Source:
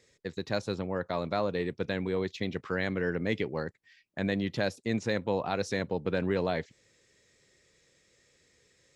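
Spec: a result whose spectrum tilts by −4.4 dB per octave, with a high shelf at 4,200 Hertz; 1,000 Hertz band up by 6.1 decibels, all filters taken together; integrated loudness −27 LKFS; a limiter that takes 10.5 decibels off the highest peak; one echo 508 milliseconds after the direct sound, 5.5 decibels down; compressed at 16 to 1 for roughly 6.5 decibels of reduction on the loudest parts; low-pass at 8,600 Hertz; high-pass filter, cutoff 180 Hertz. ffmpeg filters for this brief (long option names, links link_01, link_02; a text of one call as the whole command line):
ffmpeg -i in.wav -af "highpass=180,lowpass=8600,equalizer=frequency=1000:width_type=o:gain=8,highshelf=frequency=4200:gain=8.5,acompressor=threshold=-28dB:ratio=16,alimiter=level_in=2.5dB:limit=-24dB:level=0:latency=1,volume=-2.5dB,aecho=1:1:508:0.531,volume=11dB" out.wav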